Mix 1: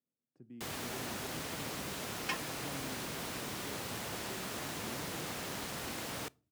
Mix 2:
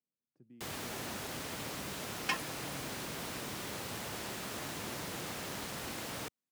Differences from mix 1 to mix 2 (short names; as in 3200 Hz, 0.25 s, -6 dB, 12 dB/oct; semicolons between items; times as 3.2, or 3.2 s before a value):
speech -4.0 dB; second sound +3.5 dB; reverb: off